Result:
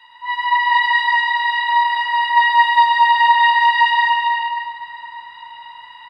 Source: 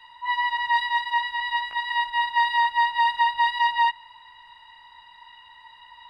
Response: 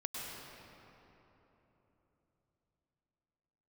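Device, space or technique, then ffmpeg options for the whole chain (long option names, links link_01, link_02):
stadium PA: -filter_complex "[0:a]highpass=frequency=130:poles=1,equalizer=frequency=1900:width_type=o:width=2:gain=3,aecho=1:1:201.2|239.1:0.282|0.794[link_01];[1:a]atrim=start_sample=2205[link_02];[link_01][link_02]afir=irnorm=-1:irlink=0,volume=3.5dB"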